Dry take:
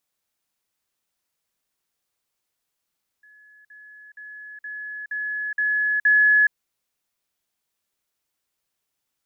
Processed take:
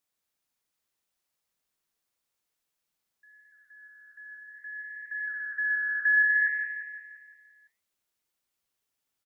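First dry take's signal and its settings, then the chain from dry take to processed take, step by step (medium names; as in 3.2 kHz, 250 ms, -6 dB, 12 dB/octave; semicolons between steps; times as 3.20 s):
level ladder 1.7 kHz -49 dBFS, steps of 6 dB, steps 7, 0.42 s 0.05 s
flange 0.57 Hz, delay 2 ms, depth 8.5 ms, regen -90%; on a send: feedback delay 172 ms, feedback 53%, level -6.5 dB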